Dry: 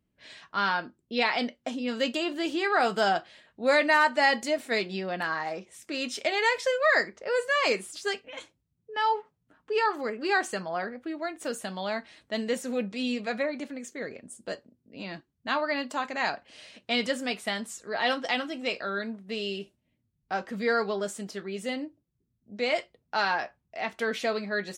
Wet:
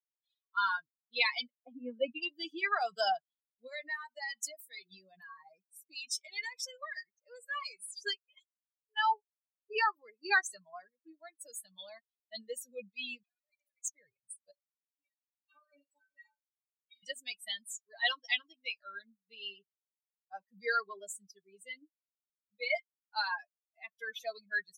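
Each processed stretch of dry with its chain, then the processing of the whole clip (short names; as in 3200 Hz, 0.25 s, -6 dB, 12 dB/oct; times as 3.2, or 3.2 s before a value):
1.48–2.23 LPF 1800 Hz + comb 4 ms, depth 89%
3.67–7.81 high shelf 5400 Hz +4.5 dB + compressor 3:1, threshold -30 dBFS
13.23–13.9 negative-ratio compressor -40 dBFS + HPF 590 Hz 24 dB/oct + flutter echo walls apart 11.8 m, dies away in 0.35 s
14.51–17.03 high shelf 3500 Hz -5 dB + metallic resonator 280 Hz, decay 0.21 s, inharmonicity 0.008 + flutter echo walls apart 7.7 m, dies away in 0.42 s
whole clip: per-bin expansion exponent 3; Bessel high-pass 510 Hz, order 2; tilt shelf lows -6 dB, about 790 Hz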